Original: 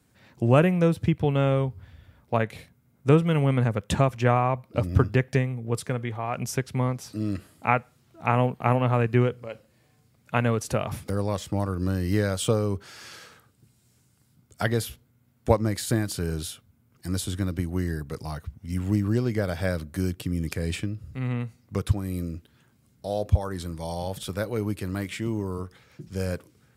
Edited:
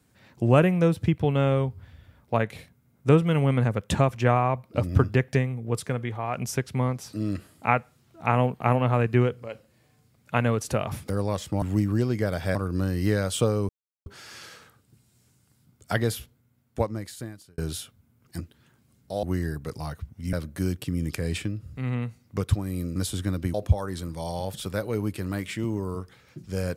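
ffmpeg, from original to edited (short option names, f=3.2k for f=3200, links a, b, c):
-filter_complex "[0:a]asplit=10[a][b][c][d][e][f][g][h][i][j];[a]atrim=end=11.622[k];[b]atrim=start=18.778:end=19.712[l];[c]atrim=start=11.618:end=12.76,asetpts=PTS-STARTPTS,afade=t=out:st=1.138:d=0.004:c=hsin,apad=pad_dur=0.37[m];[d]atrim=start=12.76:end=16.28,asetpts=PTS-STARTPTS,afade=t=in:d=0.004:c=hsin,afade=t=out:st=2.07:d=1.45[n];[e]atrim=start=16.28:end=17.102,asetpts=PTS-STARTPTS,afade=t=in:d=0.004:c=hsin[o];[f]atrim=start=22.338:end=23.172[p];[g]atrim=start=17.678:end=18.782[q];[h]atrim=start=19.708:end=22.342[r];[i]atrim=start=17.098:end=17.682[s];[j]atrim=start=23.168[t];[k][l]acrossfade=d=0.004:c1=hsin:c2=hsin[u];[m][n][o]concat=n=3:v=0:a=1[v];[u][v]acrossfade=d=0.004:c1=hsin:c2=hsin[w];[w][p]acrossfade=d=0.004:c1=hsin:c2=hsin[x];[x][q]acrossfade=d=0.004:c1=hsin:c2=hsin[y];[y][r]acrossfade=d=0.004:c1=hsin:c2=hsin[z];[z][s]acrossfade=d=0.004:c1=hsin:c2=hsin[aa];[aa][t]acrossfade=d=0.004:c1=hsin:c2=hsin"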